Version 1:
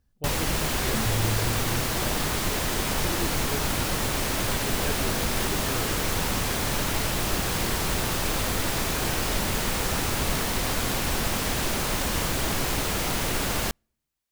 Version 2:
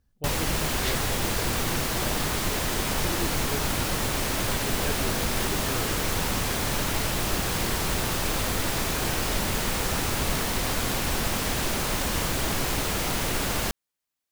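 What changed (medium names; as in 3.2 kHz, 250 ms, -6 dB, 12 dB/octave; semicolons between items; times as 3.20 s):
second sound: add tilt EQ +4.5 dB/octave; reverb: off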